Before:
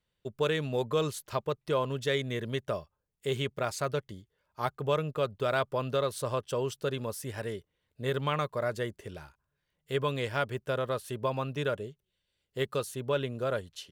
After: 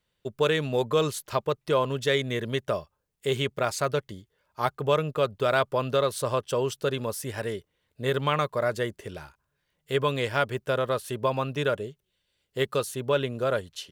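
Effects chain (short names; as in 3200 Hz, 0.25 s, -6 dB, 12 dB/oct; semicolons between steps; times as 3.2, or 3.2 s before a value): low shelf 200 Hz -3.5 dB; gain +5.5 dB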